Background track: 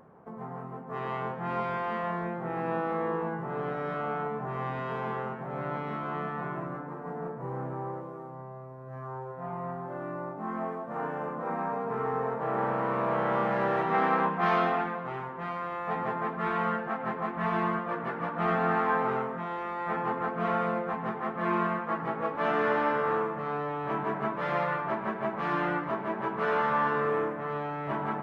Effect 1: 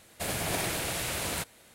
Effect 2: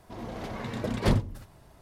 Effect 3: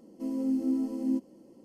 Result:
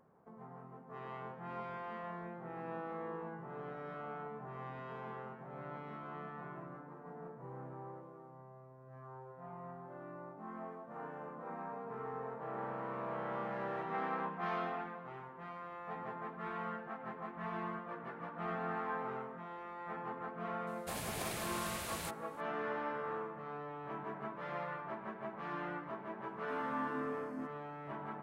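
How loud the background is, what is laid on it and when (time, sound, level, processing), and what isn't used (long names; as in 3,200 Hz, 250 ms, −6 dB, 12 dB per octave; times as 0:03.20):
background track −12.5 dB
0:20.67: mix in 1 −10.5 dB
0:26.28: mix in 3 −16 dB
not used: 2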